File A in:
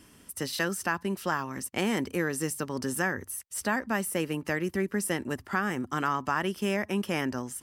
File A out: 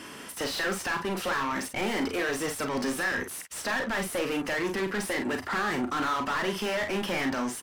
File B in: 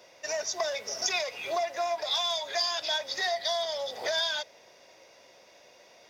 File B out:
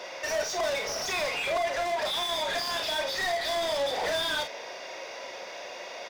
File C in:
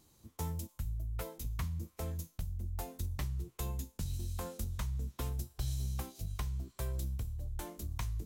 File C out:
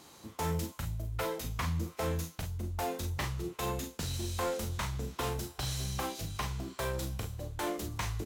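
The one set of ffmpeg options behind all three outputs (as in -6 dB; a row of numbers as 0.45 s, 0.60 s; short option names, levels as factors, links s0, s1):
-filter_complex "[0:a]asplit=2[s0][s1];[s1]highpass=f=720:p=1,volume=50.1,asoftclip=type=tanh:threshold=0.224[s2];[s0][s2]amix=inputs=2:normalize=0,lowpass=f=2500:p=1,volume=0.501,aecho=1:1:37|48:0.398|0.335,volume=0.376"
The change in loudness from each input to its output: +1.0 LU, 0.0 LU, +4.0 LU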